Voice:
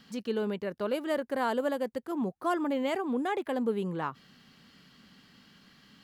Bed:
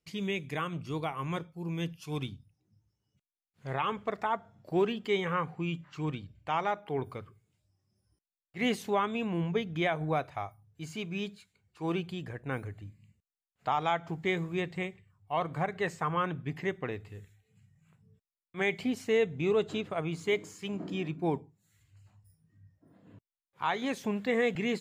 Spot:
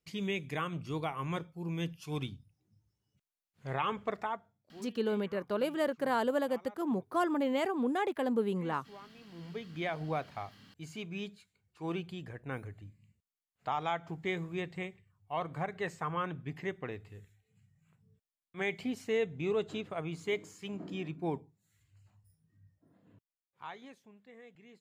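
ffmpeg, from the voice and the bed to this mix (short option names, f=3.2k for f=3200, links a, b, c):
-filter_complex "[0:a]adelay=4700,volume=-1dB[a];[1:a]volume=17dB,afade=t=out:st=4.11:d=0.47:silence=0.0841395,afade=t=in:st=9.28:d=0.73:silence=0.11885,afade=t=out:st=22.7:d=1.33:silence=0.0794328[b];[a][b]amix=inputs=2:normalize=0"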